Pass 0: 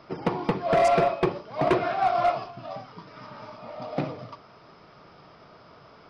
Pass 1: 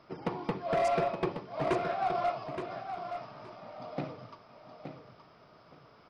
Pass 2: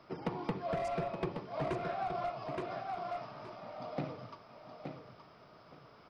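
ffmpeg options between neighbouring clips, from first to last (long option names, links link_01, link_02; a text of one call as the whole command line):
ffmpeg -i in.wav -af "aecho=1:1:871|1742|2613:0.398|0.0756|0.0144,volume=-8dB" out.wav
ffmpeg -i in.wav -filter_complex "[0:a]acrossover=split=200[link_01][link_02];[link_02]acompressor=threshold=-34dB:ratio=6[link_03];[link_01][link_03]amix=inputs=2:normalize=0" out.wav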